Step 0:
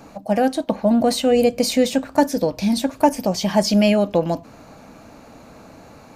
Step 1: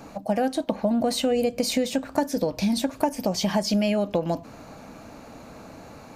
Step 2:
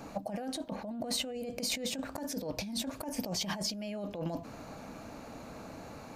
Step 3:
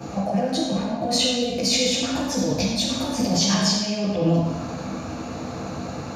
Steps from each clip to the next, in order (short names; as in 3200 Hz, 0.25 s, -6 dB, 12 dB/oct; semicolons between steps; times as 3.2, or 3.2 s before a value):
compressor 6:1, threshold -20 dBFS, peak gain reduction 10.5 dB
negative-ratio compressor -29 dBFS, ratio -1; gain -7.5 dB
reverb RT60 1.1 s, pre-delay 6 ms, DRR -9.5 dB; gain +4 dB